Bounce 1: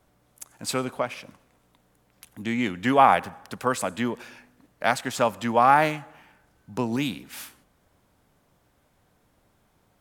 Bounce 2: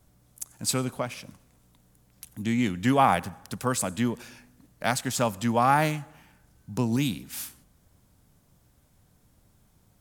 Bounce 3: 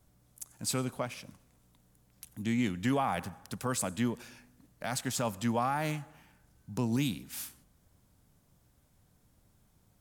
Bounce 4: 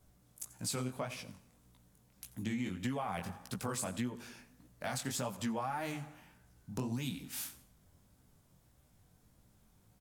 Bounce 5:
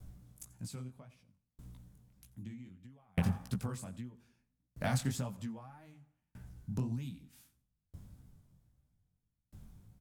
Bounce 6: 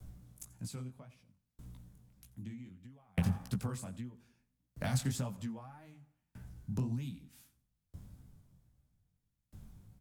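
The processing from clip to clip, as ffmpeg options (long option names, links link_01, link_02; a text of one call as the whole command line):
ffmpeg -i in.wav -af "bass=frequency=250:gain=11,treble=frequency=4000:gain=10,volume=-4.5dB" out.wav
ffmpeg -i in.wav -af "alimiter=limit=-16dB:level=0:latency=1:release=14,volume=-4.5dB" out.wav
ffmpeg -i in.wav -af "aecho=1:1:86|172|258:0.106|0.0413|0.0161,flanger=delay=15.5:depth=7.8:speed=1.7,acompressor=threshold=-37dB:ratio=5,volume=3dB" out.wav
ffmpeg -i in.wav -af "bass=frequency=250:gain=13,treble=frequency=4000:gain=-1,aeval=exprs='val(0)*pow(10,-39*if(lt(mod(0.63*n/s,1),2*abs(0.63)/1000),1-mod(0.63*n/s,1)/(2*abs(0.63)/1000),(mod(0.63*n/s,1)-2*abs(0.63)/1000)/(1-2*abs(0.63)/1000))/20)':channel_layout=same,volume=5dB" out.wav
ffmpeg -i in.wav -filter_complex "[0:a]acrossover=split=200|3000[link_01][link_02][link_03];[link_02]acompressor=threshold=-38dB:ratio=6[link_04];[link_01][link_04][link_03]amix=inputs=3:normalize=0,volume=1dB" out.wav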